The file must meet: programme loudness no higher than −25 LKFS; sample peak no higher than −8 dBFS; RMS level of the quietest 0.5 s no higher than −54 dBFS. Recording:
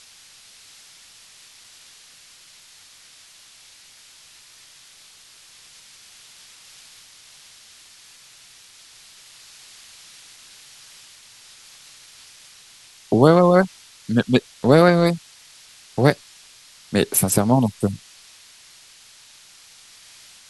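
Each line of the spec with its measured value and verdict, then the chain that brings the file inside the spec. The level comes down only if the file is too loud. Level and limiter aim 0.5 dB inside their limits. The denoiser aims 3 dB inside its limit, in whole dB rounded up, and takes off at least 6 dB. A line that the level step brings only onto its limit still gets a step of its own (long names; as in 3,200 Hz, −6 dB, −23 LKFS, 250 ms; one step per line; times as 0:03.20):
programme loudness −18.5 LKFS: out of spec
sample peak −2.0 dBFS: out of spec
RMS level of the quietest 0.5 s −49 dBFS: out of spec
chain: level −7 dB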